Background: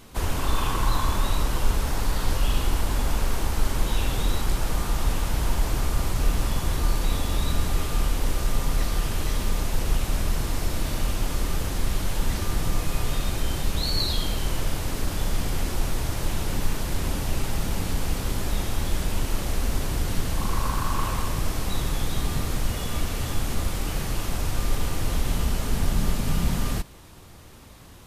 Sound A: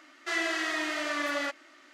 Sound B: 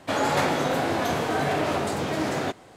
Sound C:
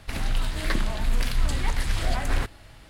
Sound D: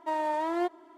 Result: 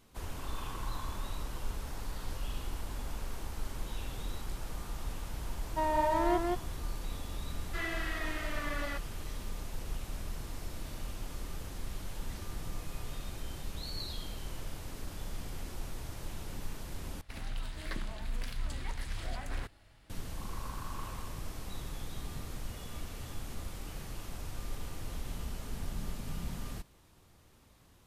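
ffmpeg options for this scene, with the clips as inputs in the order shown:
-filter_complex "[0:a]volume=-15dB[a];[4:a]aecho=1:1:175:0.708[b];[1:a]acrossover=split=4000[c][d];[d]acompressor=threshold=-54dB:ratio=4:attack=1:release=60[e];[c][e]amix=inputs=2:normalize=0[f];[a]asplit=2[g][h];[g]atrim=end=17.214[i];[3:a]atrim=end=2.89,asetpts=PTS-STARTPTS,volume=-13dB[j];[h]atrim=start=20.096[k];[b]atrim=end=0.97,asetpts=PTS-STARTPTS,volume=-1.5dB,afade=t=in:d=0.004:c=hsin,afade=t=out:st=0.966:d=0.004:c=hsin,adelay=5700[l];[f]atrim=end=1.93,asetpts=PTS-STARTPTS,volume=-7.5dB,afade=t=in:d=0.004:c=hsin,afade=t=out:st=1.926:d=0.004:c=hsin,adelay=7470[m];[i][j]acrossfade=d=0.004:c1=hsin:c2=hsin[n];[n][k]acrossfade=d=0.004:c1=hsin:c2=hsin[o];[o][l][m]amix=inputs=3:normalize=0"

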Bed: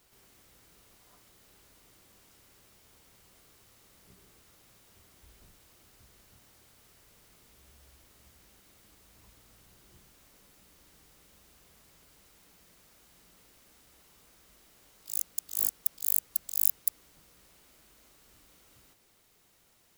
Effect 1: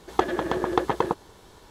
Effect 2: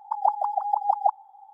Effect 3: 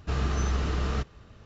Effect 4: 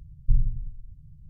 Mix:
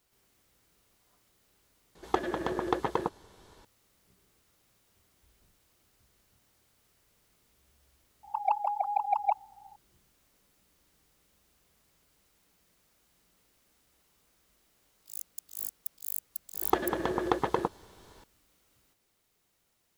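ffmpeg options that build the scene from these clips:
-filter_complex "[1:a]asplit=2[a][b];[0:a]volume=-8.5dB[c];[2:a]asoftclip=type=tanh:threshold=-11dB[d];[c]asplit=2[e][f];[e]atrim=end=1.954[g];[a]atrim=end=1.7,asetpts=PTS-STARTPTS,volume=-6dB[h];[f]atrim=start=3.646[i];[d]atrim=end=1.53,asetpts=PTS-STARTPTS,volume=-4dB,afade=t=in:d=0.004:c=hsin,afade=t=out:st=1.526:d=0.004:c=hsin,adelay=8230[j];[b]atrim=end=1.7,asetpts=PTS-STARTPTS,volume=-4.5dB,afade=t=in:d=0.004:c=hsin,afade=t=out:st=1.696:d=0.004:c=hsin,adelay=16540[k];[g][h]acrossfade=d=0.004:c1=hsin:c2=hsin[l];[l][i]acrossfade=d=0.004:c1=hsin:c2=hsin[m];[m][j][k]amix=inputs=3:normalize=0"

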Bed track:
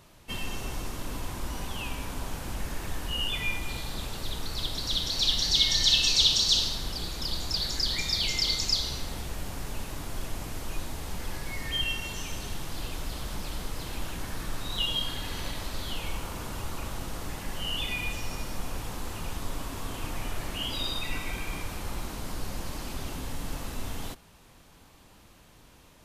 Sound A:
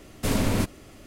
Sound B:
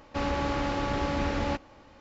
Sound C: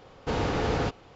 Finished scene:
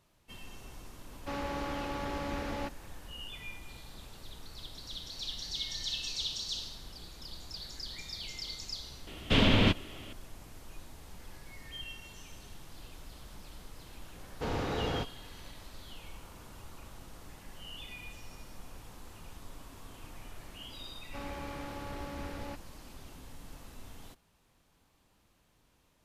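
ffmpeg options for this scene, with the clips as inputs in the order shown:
-filter_complex "[2:a]asplit=2[a][b];[0:a]volume=-14dB[c];[a]equalizer=f=84:w=0.65:g=-4[d];[1:a]lowpass=f=3.2k:t=q:w=4.6[e];[d]atrim=end=2,asetpts=PTS-STARTPTS,volume=-7dB,afade=t=in:d=0.004:c=hsin,afade=t=out:st=1.996:d=0.004:c=hsin,adelay=1120[f];[e]atrim=end=1.06,asetpts=PTS-STARTPTS,volume=-1dB,afade=t=in:d=0.004:c=hsin,afade=t=out:st=1.056:d=0.004:c=hsin,adelay=9070[g];[3:a]atrim=end=1.15,asetpts=PTS-STARTPTS,volume=-6.5dB,afade=t=in:d=0.004:c=hsin,afade=t=out:st=1.146:d=0.004:c=hsin,adelay=14140[h];[b]atrim=end=2,asetpts=PTS-STARTPTS,volume=-13dB,afade=t=in:d=0.004:c=hsin,afade=t=out:st=1.996:d=0.004:c=hsin,adelay=20990[i];[c][f][g][h][i]amix=inputs=5:normalize=0"

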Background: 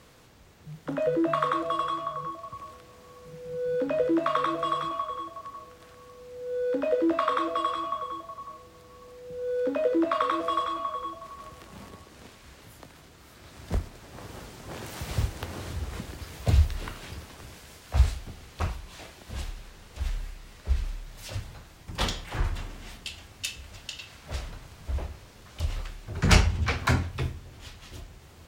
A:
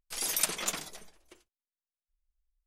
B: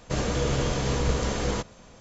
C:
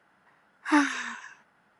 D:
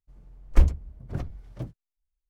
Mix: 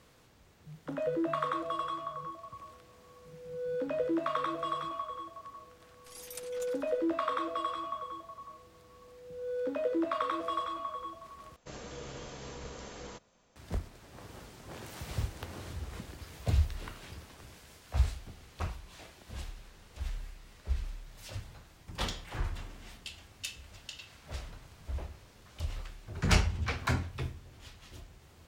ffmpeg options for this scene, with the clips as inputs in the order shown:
-filter_complex "[0:a]volume=-6.5dB[a];[2:a]lowshelf=f=220:g=-7.5[b];[a]asplit=2[c][d];[c]atrim=end=11.564[e];[b]atrim=end=2,asetpts=PTS-STARTPTS,volume=-15.5dB[f];[d]atrim=start=13.556[g];[1:a]atrim=end=2.66,asetpts=PTS-STARTPTS,volume=-16.5dB,afade=t=in:d=0.004:c=hsin,afade=t=out:st=2.656:d=0.004:c=hsin,adelay=5940[h];[e][f]acrossfade=d=0.004:c1=hsin:c2=hsin[i];[i][g]acrossfade=d=0.004:c1=hsin:c2=hsin[j];[j][h]amix=inputs=2:normalize=0"

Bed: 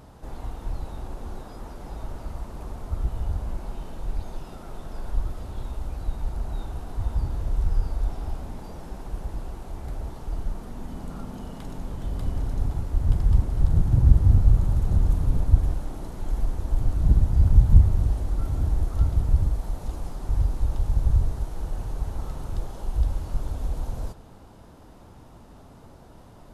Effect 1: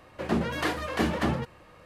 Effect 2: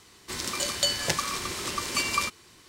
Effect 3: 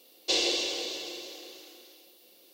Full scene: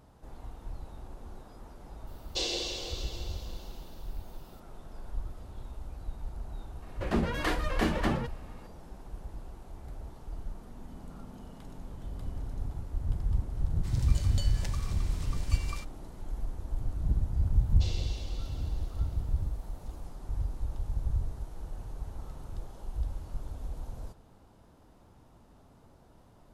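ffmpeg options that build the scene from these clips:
-filter_complex "[3:a]asplit=2[a][b];[0:a]volume=-10dB[c];[a]equalizer=f=2.2k:w=2.9:g=-4,atrim=end=2.53,asetpts=PTS-STARTPTS,volume=-5.5dB,afade=t=in:d=0.004:c=hsin,afade=t=out:st=2.526:d=0.004:c=hsin,adelay=2070[d];[1:a]atrim=end=1.85,asetpts=PTS-STARTPTS,volume=-2.5dB,afade=t=in:d=0.004:c=hsin,afade=t=out:st=1.846:d=0.004:c=hsin,adelay=300762S[e];[2:a]atrim=end=2.68,asetpts=PTS-STARTPTS,volume=-17dB,afade=t=in:d=0.004:c=hsin,afade=t=out:st=2.676:d=0.004:c=hsin,adelay=13550[f];[b]atrim=end=2.53,asetpts=PTS-STARTPTS,volume=-17dB,afade=t=in:d=0.004:c=hsin,afade=t=out:st=2.526:d=0.004:c=hsin,adelay=17520[g];[c][d][e][f][g]amix=inputs=5:normalize=0"

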